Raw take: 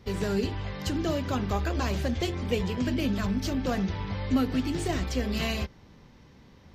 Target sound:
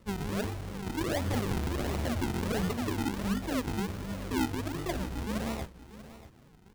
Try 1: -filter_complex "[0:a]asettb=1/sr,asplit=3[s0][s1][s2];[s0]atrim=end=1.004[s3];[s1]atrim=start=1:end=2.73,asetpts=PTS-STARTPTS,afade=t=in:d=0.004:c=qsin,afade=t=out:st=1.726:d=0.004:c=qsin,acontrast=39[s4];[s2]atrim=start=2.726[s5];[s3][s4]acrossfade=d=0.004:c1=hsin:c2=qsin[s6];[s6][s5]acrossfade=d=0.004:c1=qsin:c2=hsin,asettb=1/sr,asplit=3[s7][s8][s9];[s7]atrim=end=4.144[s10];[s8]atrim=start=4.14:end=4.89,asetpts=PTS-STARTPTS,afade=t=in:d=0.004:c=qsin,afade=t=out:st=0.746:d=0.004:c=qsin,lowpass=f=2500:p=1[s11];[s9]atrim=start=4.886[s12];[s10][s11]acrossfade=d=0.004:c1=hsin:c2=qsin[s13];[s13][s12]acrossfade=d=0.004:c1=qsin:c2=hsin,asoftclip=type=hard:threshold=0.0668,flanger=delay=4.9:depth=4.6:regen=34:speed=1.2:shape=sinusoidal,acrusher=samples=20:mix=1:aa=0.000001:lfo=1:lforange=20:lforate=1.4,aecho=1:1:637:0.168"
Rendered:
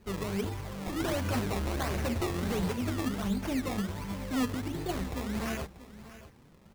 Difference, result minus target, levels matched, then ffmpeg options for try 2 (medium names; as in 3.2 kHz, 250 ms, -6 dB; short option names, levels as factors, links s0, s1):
decimation with a swept rate: distortion -8 dB
-filter_complex "[0:a]asettb=1/sr,asplit=3[s0][s1][s2];[s0]atrim=end=1.004[s3];[s1]atrim=start=1:end=2.73,asetpts=PTS-STARTPTS,afade=t=in:d=0.004:c=qsin,afade=t=out:st=1.726:d=0.004:c=qsin,acontrast=39[s4];[s2]atrim=start=2.726[s5];[s3][s4]acrossfade=d=0.004:c1=hsin:c2=qsin[s6];[s6][s5]acrossfade=d=0.004:c1=qsin:c2=hsin,asettb=1/sr,asplit=3[s7][s8][s9];[s7]atrim=end=4.144[s10];[s8]atrim=start=4.14:end=4.89,asetpts=PTS-STARTPTS,afade=t=in:d=0.004:c=qsin,afade=t=out:st=0.746:d=0.004:c=qsin,lowpass=f=2500:p=1[s11];[s9]atrim=start=4.886[s12];[s10][s11]acrossfade=d=0.004:c1=hsin:c2=qsin[s13];[s13][s12]acrossfade=d=0.004:c1=qsin:c2=hsin,asoftclip=type=hard:threshold=0.0668,flanger=delay=4.9:depth=4.6:regen=34:speed=1.2:shape=sinusoidal,acrusher=samples=53:mix=1:aa=0.000001:lfo=1:lforange=53:lforate=1.4,aecho=1:1:637:0.168"